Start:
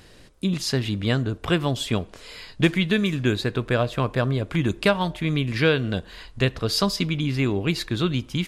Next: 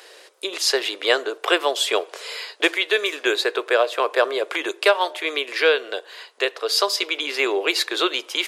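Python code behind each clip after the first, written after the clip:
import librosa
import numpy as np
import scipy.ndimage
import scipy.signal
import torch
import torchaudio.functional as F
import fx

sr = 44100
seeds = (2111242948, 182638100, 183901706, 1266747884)

y = scipy.signal.sosfilt(scipy.signal.butter(8, 390.0, 'highpass', fs=sr, output='sos'), x)
y = fx.rider(y, sr, range_db=3, speed_s=0.5)
y = F.gain(torch.from_numpy(y), 6.5).numpy()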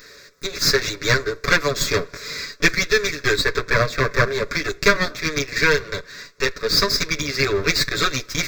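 y = fx.lower_of_two(x, sr, delay_ms=7.0)
y = fx.fixed_phaser(y, sr, hz=3000.0, stages=6)
y = F.gain(torch.from_numpy(y), 6.5).numpy()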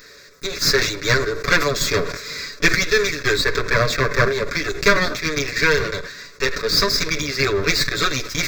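y = fx.sustainer(x, sr, db_per_s=69.0)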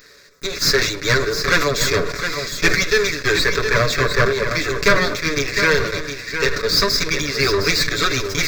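y = fx.leveller(x, sr, passes=1)
y = y + 10.0 ** (-8.0 / 20.0) * np.pad(y, (int(711 * sr / 1000.0), 0))[:len(y)]
y = F.gain(torch.from_numpy(y), -2.5).numpy()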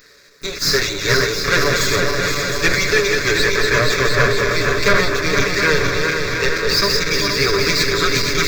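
y = fx.reverse_delay_fb(x, sr, ms=235, feedback_pct=79, wet_db=-4.5)
y = F.gain(torch.from_numpy(y), -1.0).numpy()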